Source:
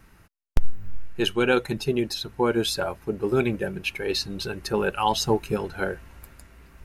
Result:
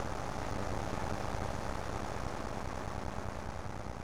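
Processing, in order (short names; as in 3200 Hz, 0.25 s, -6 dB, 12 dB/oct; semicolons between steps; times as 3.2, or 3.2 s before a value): in parallel at -2 dB: limiter -17 dBFS, peak gain reduction 10 dB; on the sum: Paulstretch 42×, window 0.50 s, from 0.57; speaker cabinet 100–9800 Hz, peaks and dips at 580 Hz +7 dB, 830 Hz +8 dB, 1200 Hz +9 dB, 2900 Hz -9 dB, 6300 Hz +4 dB; plain phase-vocoder stretch 0.59×; on a send: swelling echo 0.102 s, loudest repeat 5, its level -12 dB; on the sum: half-wave rectifier; gain +1 dB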